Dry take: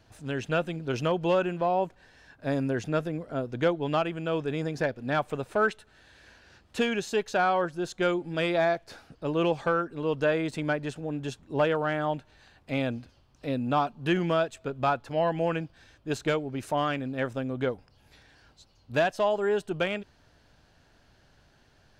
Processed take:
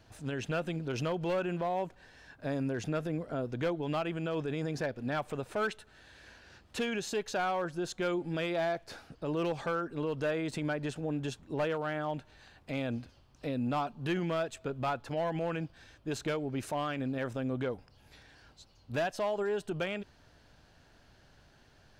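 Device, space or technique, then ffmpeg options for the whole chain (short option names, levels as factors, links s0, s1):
clipper into limiter: -af "asoftclip=type=hard:threshold=0.106,alimiter=level_in=1.26:limit=0.0631:level=0:latency=1:release=60,volume=0.794"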